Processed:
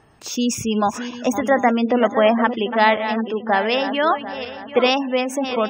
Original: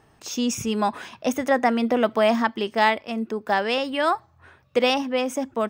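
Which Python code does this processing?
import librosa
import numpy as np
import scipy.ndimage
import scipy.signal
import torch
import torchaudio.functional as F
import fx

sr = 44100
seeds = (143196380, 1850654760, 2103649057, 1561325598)

y = fx.reverse_delay_fb(x, sr, ms=371, feedback_pct=58, wet_db=-10)
y = fx.spec_gate(y, sr, threshold_db=-30, keep='strong')
y = y * librosa.db_to_amplitude(3.5)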